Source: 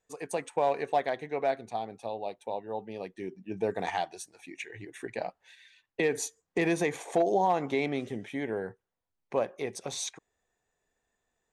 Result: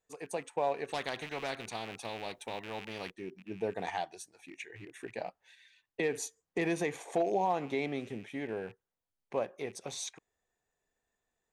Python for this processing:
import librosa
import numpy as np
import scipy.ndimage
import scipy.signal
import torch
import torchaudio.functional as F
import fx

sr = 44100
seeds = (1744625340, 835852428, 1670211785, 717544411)

y = fx.rattle_buzz(x, sr, strikes_db=-50.0, level_db=-40.0)
y = fx.spectral_comp(y, sr, ratio=2.0, at=(0.88, 3.1), fade=0.02)
y = F.gain(torch.from_numpy(y), -4.5).numpy()